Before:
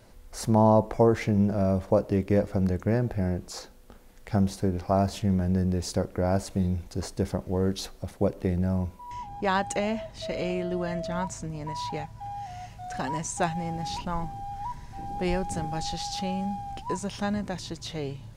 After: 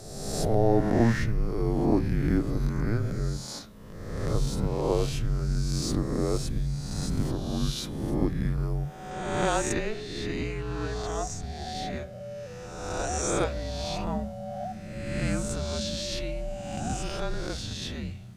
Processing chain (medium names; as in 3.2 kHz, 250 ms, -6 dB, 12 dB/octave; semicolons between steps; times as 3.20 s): reverse spectral sustain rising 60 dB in 1.33 s; frequency shift -230 Hz; de-hum 127.5 Hz, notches 32; trim -2.5 dB